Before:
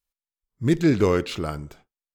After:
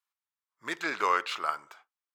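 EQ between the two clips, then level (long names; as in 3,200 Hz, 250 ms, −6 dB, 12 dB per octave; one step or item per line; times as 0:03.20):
high-pass with resonance 1,100 Hz, resonance Q 2.2
high-shelf EQ 4,300 Hz −7.5 dB
0.0 dB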